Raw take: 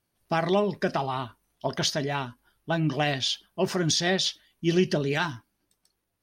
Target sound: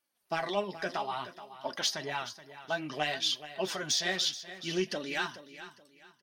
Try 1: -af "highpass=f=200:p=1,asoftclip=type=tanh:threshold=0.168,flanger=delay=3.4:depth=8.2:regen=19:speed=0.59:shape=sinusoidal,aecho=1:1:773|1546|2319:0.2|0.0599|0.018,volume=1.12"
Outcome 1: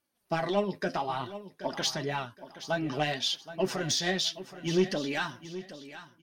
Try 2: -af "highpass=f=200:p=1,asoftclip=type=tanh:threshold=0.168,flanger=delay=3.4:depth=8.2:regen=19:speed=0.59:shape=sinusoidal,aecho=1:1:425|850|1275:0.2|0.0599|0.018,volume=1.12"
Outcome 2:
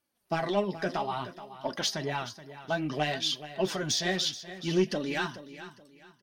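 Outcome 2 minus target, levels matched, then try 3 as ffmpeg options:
250 Hz band +5.0 dB
-af "highpass=f=800:p=1,asoftclip=type=tanh:threshold=0.168,flanger=delay=3.4:depth=8.2:regen=19:speed=0.59:shape=sinusoidal,aecho=1:1:425|850|1275:0.2|0.0599|0.018,volume=1.12"

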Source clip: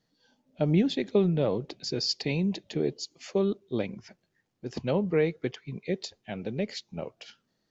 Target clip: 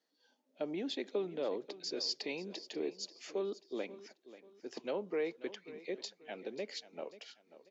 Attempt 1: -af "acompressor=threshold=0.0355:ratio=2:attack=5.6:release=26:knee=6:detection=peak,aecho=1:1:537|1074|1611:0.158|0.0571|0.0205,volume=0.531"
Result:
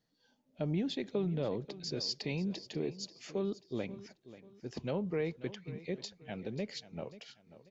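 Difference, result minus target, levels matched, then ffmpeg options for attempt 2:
250 Hz band +3.5 dB
-af "acompressor=threshold=0.0355:ratio=2:attack=5.6:release=26:knee=6:detection=peak,highpass=f=290:w=0.5412,highpass=f=290:w=1.3066,aecho=1:1:537|1074|1611:0.158|0.0571|0.0205,volume=0.531"

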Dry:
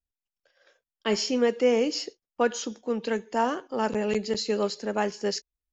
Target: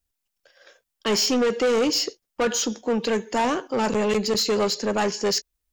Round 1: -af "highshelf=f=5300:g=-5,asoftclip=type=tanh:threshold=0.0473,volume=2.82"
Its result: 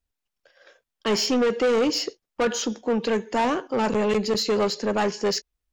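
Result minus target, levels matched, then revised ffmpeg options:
8 kHz band -4.0 dB
-af "highshelf=f=5300:g=5.5,asoftclip=type=tanh:threshold=0.0473,volume=2.82"

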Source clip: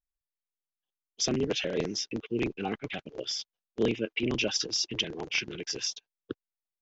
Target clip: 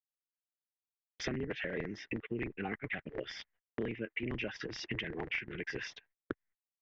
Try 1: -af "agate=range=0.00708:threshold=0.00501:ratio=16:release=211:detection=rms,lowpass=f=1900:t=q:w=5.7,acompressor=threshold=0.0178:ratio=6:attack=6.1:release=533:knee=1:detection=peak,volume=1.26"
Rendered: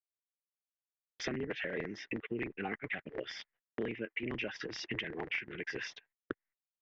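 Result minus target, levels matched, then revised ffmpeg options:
125 Hz band -3.5 dB
-af "agate=range=0.00708:threshold=0.00501:ratio=16:release=211:detection=rms,lowpass=f=1900:t=q:w=5.7,lowshelf=f=140:g=10,acompressor=threshold=0.0178:ratio=6:attack=6.1:release=533:knee=1:detection=peak,volume=1.26"

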